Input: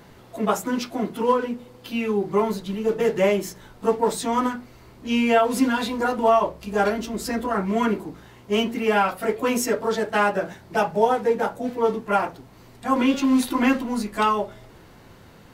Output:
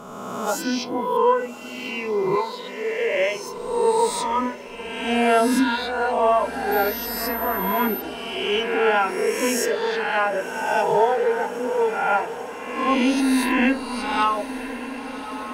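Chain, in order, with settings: reverse spectral sustain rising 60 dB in 1.88 s; 2.35–3.47 s: frequency weighting A; spectral noise reduction 11 dB; treble shelf 8.9 kHz -3.5 dB; on a send: echo that smears into a reverb 1146 ms, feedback 62%, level -13.5 dB; 6.71–8.00 s: on the sum: whistle 13 kHz -28 dBFS; in parallel at -2.5 dB: gain riding within 5 dB 2 s; on the sum: trim -6.5 dB

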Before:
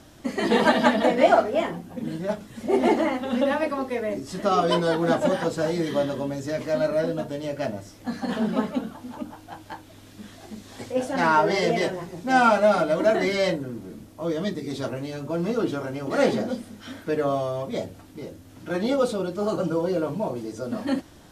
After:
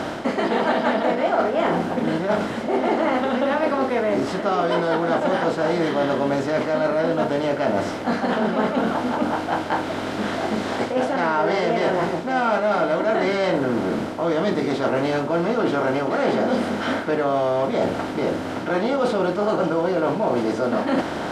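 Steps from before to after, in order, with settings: spectral levelling over time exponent 0.6; low-pass 2.9 kHz 6 dB/octave; bass shelf 160 Hz -5 dB; reverse; compression 6:1, threshold -26 dBFS, peak gain reduction 15 dB; reverse; trim +8 dB

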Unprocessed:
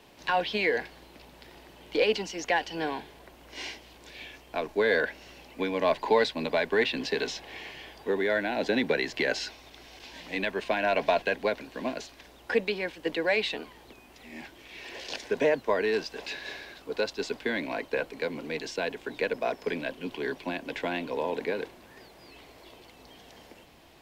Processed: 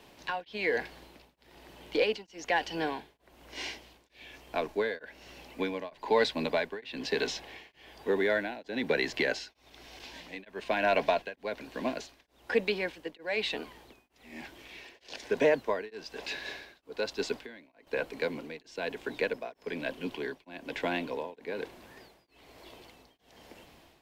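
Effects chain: 17.37–17.87 s: compression 2.5:1, threshold -48 dBFS, peak gain reduction 15 dB; tremolo of two beating tones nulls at 1.1 Hz

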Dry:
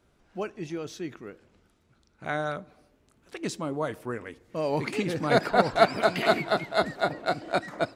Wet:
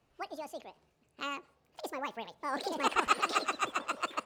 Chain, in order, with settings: median filter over 3 samples; treble shelf 6.4 kHz -7.5 dB; wide varispeed 1.87×; trim -7 dB

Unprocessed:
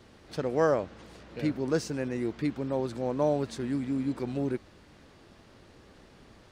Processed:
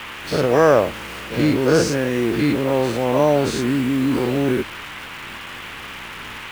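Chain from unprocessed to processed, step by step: every event in the spectrogram widened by 120 ms; bit crusher 8-bit; band noise 870–3100 Hz -43 dBFS; trim +8 dB

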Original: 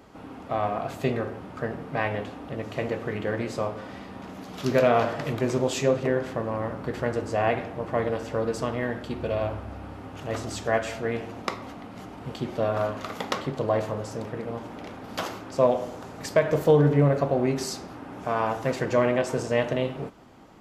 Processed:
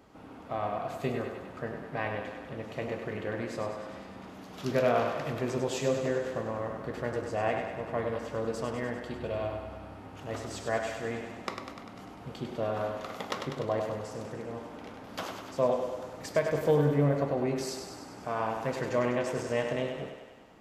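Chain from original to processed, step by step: thinning echo 99 ms, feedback 66%, high-pass 260 Hz, level -6.5 dB; trim -6.5 dB

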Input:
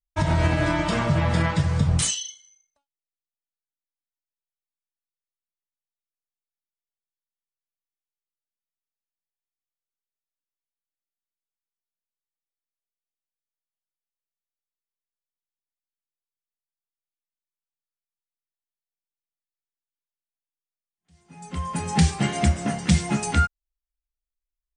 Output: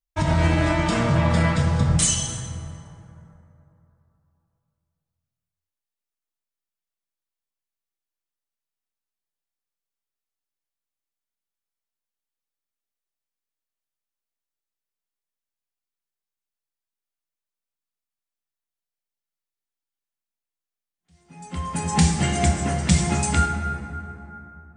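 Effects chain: plate-style reverb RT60 3.1 s, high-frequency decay 0.45×, DRR 3.5 dB; dynamic bell 7.6 kHz, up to +6 dB, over -44 dBFS, Q 2

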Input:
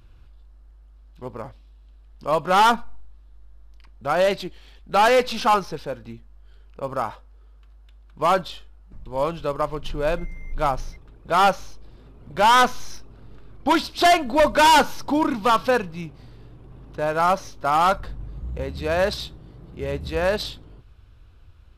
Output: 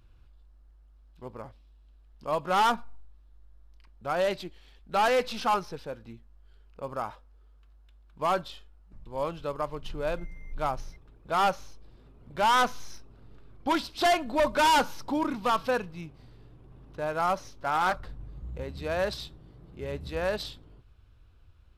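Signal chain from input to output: 17.41–18.09 s: loudspeaker Doppler distortion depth 0.33 ms; trim -7.5 dB

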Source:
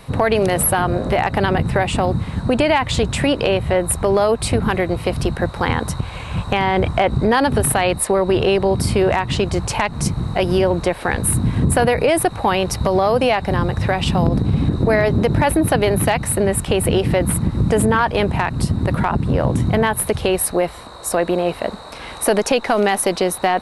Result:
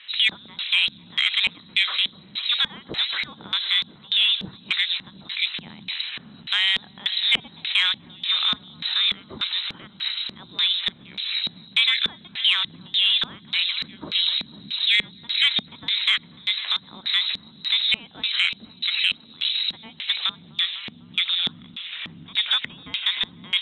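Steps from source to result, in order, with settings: high-pass 80 Hz 12 dB/octave; echo whose repeats swap between lows and highs 125 ms, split 940 Hz, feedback 89%, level -13.5 dB; frequency inversion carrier 4 kHz; distance through air 160 m; LFO band-pass square 1.7 Hz 210–2400 Hz; transformer saturation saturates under 1.4 kHz; trim +5 dB

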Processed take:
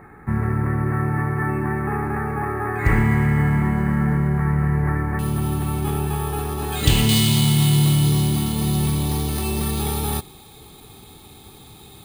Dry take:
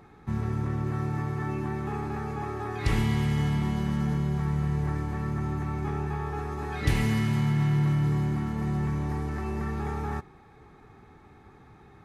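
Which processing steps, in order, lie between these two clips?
careless resampling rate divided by 4×, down filtered, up hold; resonant high shelf 2.5 kHz -9.5 dB, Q 3, from 5.19 s +6.5 dB, from 7.09 s +12.5 dB; trim +7.5 dB

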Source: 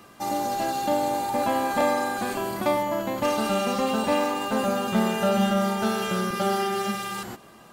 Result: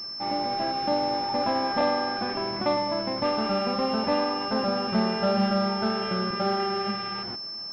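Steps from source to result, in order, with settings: class-D stage that switches slowly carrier 5.3 kHz; trim -1.5 dB

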